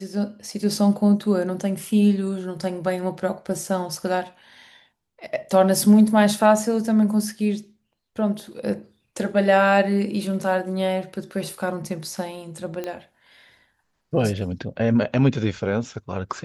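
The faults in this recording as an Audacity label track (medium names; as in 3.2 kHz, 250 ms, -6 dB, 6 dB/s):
12.840000	12.840000	pop -16 dBFS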